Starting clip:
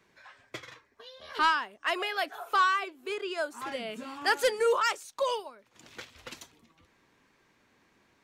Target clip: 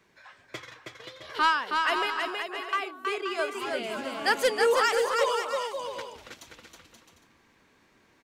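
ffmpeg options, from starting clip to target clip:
-filter_complex "[0:a]asettb=1/sr,asplit=3[s0][s1][s2];[s0]atrim=end=2.104[s3];[s1]atrim=start=2.1:end=2.73,asetpts=PTS-STARTPTS,afade=t=in:d=0.004:c=qsin,afade=t=out:st=0.626:d=0.004:c=qsin,bandpass=f=290:t=q:w=3:csg=0[s4];[s2]atrim=start=2.726[s5];[s3][s4]acrossfade=d=0.004:c1=hsin:c2=qsin[s6];[s6][s5]acrossfade=d=0.004:c1=qsin:c2=hsin,asplit=3[s7][s8][s9];[s7]afade=t=out:st=6.01:d=0.02[s10];[s8]acompressor=threshold=0.00398:ratio=6,afade=t=in:st=6.01:d=0.02,afade=t=out:st=6.41:d=0.02[s11];[s9]afade=t=in:st=6.41:d=0.02[s12];[s10][s11][s12]amix=inputs=3:normalize=0,aecho=1:1:320|528|663.2|751.1|808.2:0.631|0.398|0.251|0.158|0.1,volume=1.19"

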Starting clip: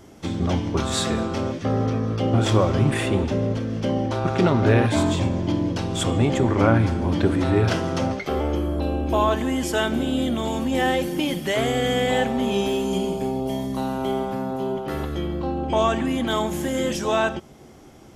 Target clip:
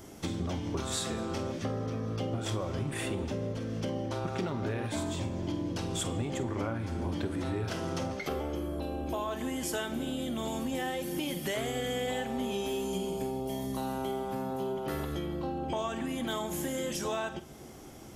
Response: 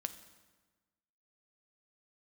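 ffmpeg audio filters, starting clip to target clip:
-filter_complex "[0:a]highshelf=f=7600:g=10.5,acompressor=threshold=0.0355:ratio=6,asplit=2[s0][s1];[1:a]atrim=start_sample=2205,adelay=48[s2];[s1][s2]afir=irnorm=-1:irlink=0,volume=0.251[s3];[s0][s3]amix=inputs=2:normalize=0,volume=0.794"

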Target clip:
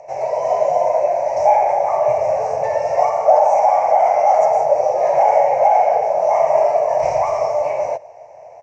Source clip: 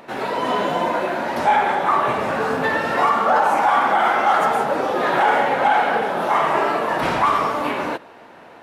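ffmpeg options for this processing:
-af "firequalizer=gain_entry='entry(130,0);entry(230,-28);entry(610,14);entry(1400,-23);entry(2200,-2);entry(3400,-27);entry(5800,9);entry(11000,-28)':delay=0.05:min_phase=1,volume=0.841"

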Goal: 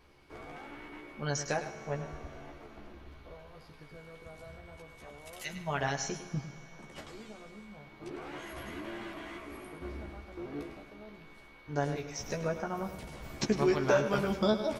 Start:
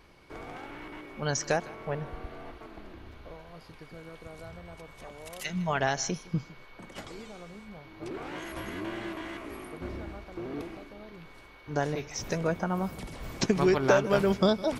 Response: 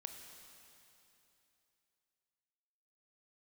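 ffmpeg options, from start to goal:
-filter_complex "[0:a]asplit=2[s0][s1];[s1]adelay=14,volume=0.631[s2];[s0][s2]amix=inputs=2:normalize=0,asplit=2[s3][s4];[1:a]atrim=start_sample=2205,adelay=104[s5];[s4][s5]afir=irnorm=-1:irlink=0,volume=0.501[s6];[s3][s6]amix=inputs=2:normalize=0,volume=0.501"

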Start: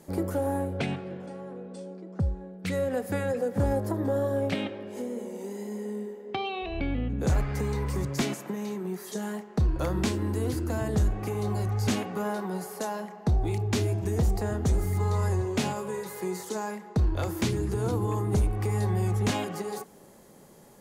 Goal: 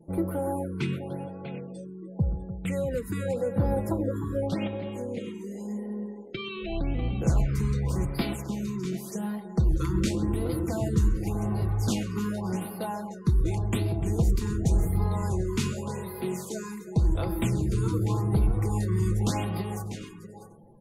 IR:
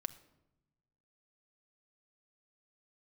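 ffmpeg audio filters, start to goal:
-filter_complex "[0:a]highshelf=f=4400:g=3.5,aecho=1:1:6:0.42,aecho=1:1:131|298|645|740:0.15|0.211|0.282|0.126,asplit=2[s0][s1];[1:a]atrim=start_sample=2205,asetrate=27783,aresample=44100[s2];[s1][s2]afir=irnorm=-1:irlink=0,volume=0.631[s3];[s0][s3]amix=inputs=2:normalize=0,afftdn=nr=36:nf=-47,lowshelf=f=190:g=7.5,bandreject=f=1700:w=11,afftfilt=real='re*(1-between(b*sr/1024,610*pow(7300/610,0.5+0.5*sin(2*PI*0.88*pts/sr))/1.41,610*pow(7300/610,0.5+0.5*sin(2*PI*0.88*pts/sr))*1.41))':imag='im*(1-between(b*sr/1024,610*pow(7300/610,0.5+0.5*sin(2*PI*0.88*pts/sr))/1.41,610*pow(7300/610,0.5+0.5*sin(2*PI*0.88*pts/sr))*1.41))':win_size=1024:overlap=0.75,volume=0.422"

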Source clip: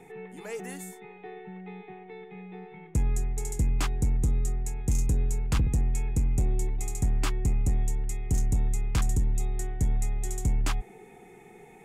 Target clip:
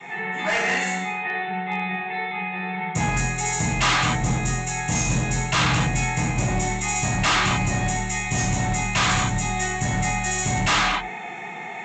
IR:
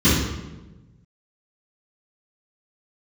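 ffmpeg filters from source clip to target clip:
-filter_complex "[0:a]highpass=770[s0];[1:a]atrim=start_sample=2205,afade=t=out:st=0.22:d=0.01,atrim=end_sample=10143,asetrate=26019,aresample=44100[s1];[s0][s1]afir=irnorm=-1:irlink=0,aresample=16000,asoftclip=type=hard:threshold=0.141,aresample=44100"

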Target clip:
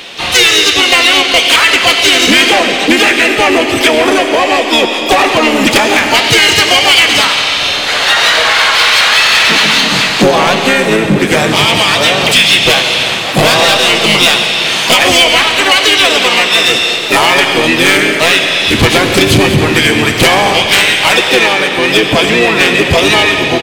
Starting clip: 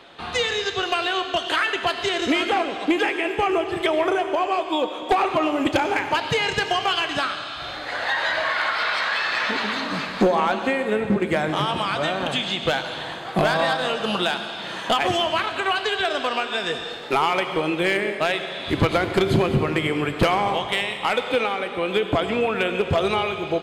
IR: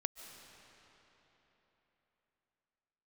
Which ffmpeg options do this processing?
-filter_complex "[0:a]aexciter=amount=4.9:drive=0.9:freq=2300,asplit=3[s0][s1][s2];[s1]asetrate=33038,aresample=44100,atempo=1.33484,volume=0.708[s3];[s2]asetrate=66075,aresample=44100,atempo=0.66742,volume=0.251[s4];[s0][s3][s4]amix=inputs=3:normalize=0,asplit=2[s5][s6];[1:a]atrim=start_sample=2205[s7];[s6][s7]afir=irnorm=-1:irlink=0,volume=1.19[s8];[s5][s8]amix=inputs=2:normalize=0,acontrast=64,volume=0.891"

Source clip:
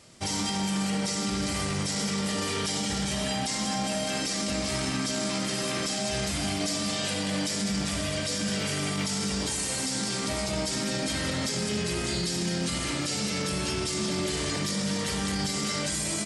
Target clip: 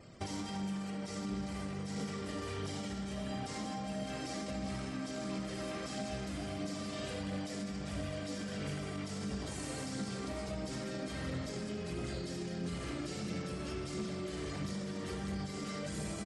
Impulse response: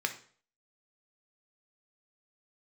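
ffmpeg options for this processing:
-filter_complex "[0:a]highshelf=f=2300:g=-11.5,bandreject=f=900:w=11,asplit=2[s0][s1];[s1]adelay=874.6,volume=0.447,highshelf=f=4000:g=-19.7[s2];[s0][s2]amix=inputs=2:normalize=0,acompressor=threshold=0.0112:ratio=6,aphaser=in_gain=1:out_gain=1:delay=3.7:decay=0.25:speed=1.5:type=triangular,afftfilt=real='re*gte(hypot(re,im),0.000631)':imag='im*gte(hypot(re,im),0.000631)':win_size=1024:overlap=0.75,volume=1.19"

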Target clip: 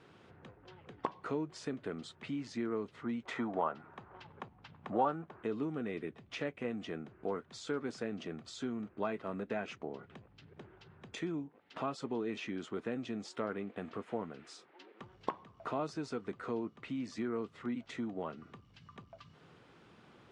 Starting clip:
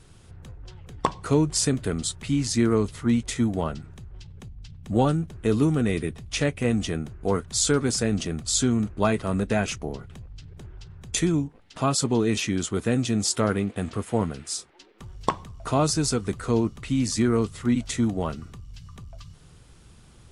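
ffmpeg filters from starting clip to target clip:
-filter_complex "[0:a]asettb=1/sr,asplit=3[s0][s1][s2];[s0]atrim=end=3.254[s3];[s1]atrim=start=3.25:end=5.43,asetpts=PTS-STARTPTS,afade=t=in:d=0.004:c=qsin,afade=t=out:st=2.176:d=0.004:c=qsin,equalizer=f=1000:w=0.71:g=15[s4];[s2]atrim=start=5.426[s5];[s3][s4]acrossfade=d=0.004:c1=hsin:c2=qsin[s6];[s6][s5]acrossfade=d=0.004:c1=qsin:c2=hsin,acompressor=threshold=0.00891:ratio=2,highpass=250,lowpass=2500"

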